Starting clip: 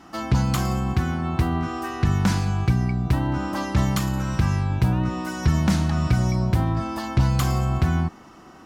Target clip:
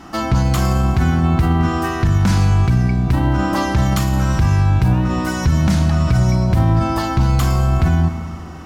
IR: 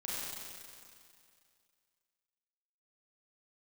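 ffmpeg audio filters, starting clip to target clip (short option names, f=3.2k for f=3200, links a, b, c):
-filter_complex "[0:a]lowshelf=f=89:g=8,alimiter=limit=-16dB:level=0:latency=1:release=27,asplit=2[a][b];[1:a]atrim=start_sample=2205,asetrate=48510,aresample=44100[c];[b][c]afir=irnorm=-1:irlink=0,volume=-10dB[d];[a][d]amix=inputs=2:normalize=0,volume=7dB"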